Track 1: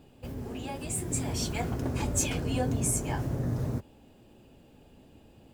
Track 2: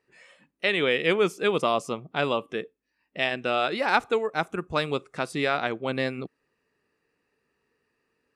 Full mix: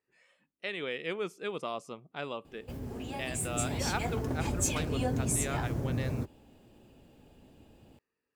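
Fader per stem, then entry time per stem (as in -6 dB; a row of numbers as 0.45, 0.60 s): -2.0, -12.5 dB; 2.45, 0.00 s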